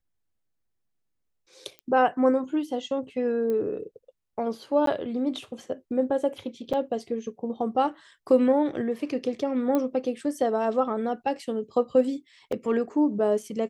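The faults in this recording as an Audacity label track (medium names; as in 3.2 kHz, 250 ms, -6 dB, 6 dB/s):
1.790000	1.790000	pop -27 dBFS
3.500000	3.500000	pop -20 dBFS
4.860000	4.870000	dropout 13 ms
6.730000	6.740000	dropout 6.2 ms
9.750000	9.750000	pop -14 dBFS
12.520000	12.520000	dropout 4.8 ms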